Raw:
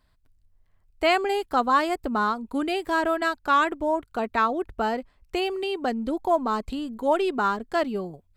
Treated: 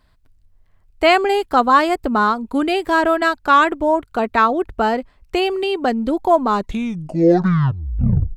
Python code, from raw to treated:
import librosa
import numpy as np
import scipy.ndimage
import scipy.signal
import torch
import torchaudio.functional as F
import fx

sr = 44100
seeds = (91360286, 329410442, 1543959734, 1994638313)

y = fx.tape_stop_end(x, sr, length_s=1.9)
y = fx.high_shelf(y, sr, hz=5900.0, db=-4.0)
y = F.gain(torch.from_numpy(y), 8.0).numpy()